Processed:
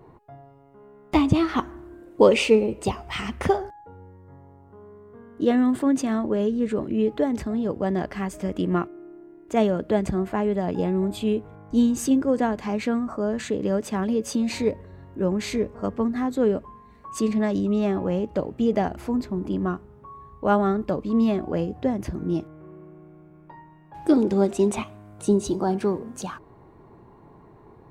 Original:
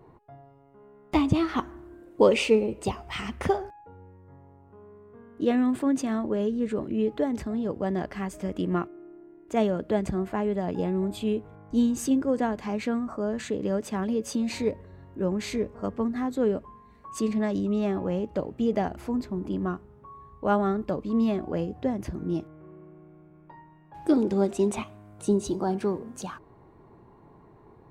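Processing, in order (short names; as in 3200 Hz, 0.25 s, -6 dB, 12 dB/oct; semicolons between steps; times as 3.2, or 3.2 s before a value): 3.56–5.82 notch 2500 Hz, Q 7.3; gain +3.5 dB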